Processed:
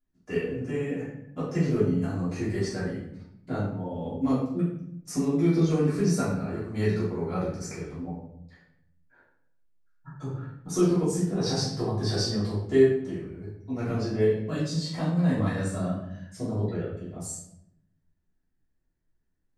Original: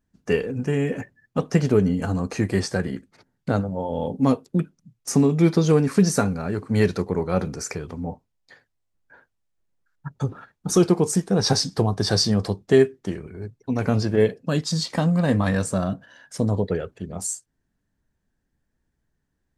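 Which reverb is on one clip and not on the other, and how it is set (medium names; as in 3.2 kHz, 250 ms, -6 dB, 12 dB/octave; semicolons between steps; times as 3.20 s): simulated room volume 170 m³, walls mixed, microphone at 3.1 m; trim -17.5 dB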